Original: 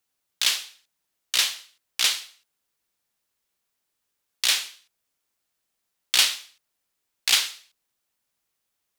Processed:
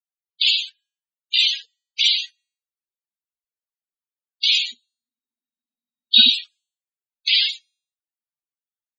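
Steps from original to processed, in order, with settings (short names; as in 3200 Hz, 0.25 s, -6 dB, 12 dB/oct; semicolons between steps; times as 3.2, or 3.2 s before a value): notch 5300 Hz, Q 10; de-hum 274.5 Hz, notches 33; sample leveller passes 5; 4.67–6.3 small resonant body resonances 240/3800 Hz, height 13 dB -> 17 dB, ringing for 80 ms; loudest bins only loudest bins 32; gain -1.5 dB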